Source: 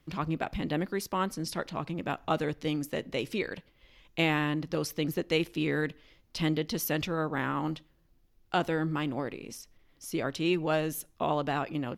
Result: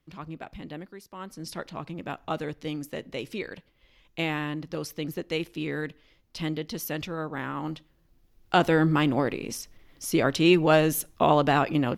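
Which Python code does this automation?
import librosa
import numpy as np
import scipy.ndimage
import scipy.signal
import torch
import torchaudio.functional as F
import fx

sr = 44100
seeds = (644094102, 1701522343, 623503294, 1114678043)

y = fx.gain(x, sr, db=fx.line((0.7, -7.5), (1.07, -14.0), (1.49, -2.0), (7.51, -2.0), (8.77, 8.5)))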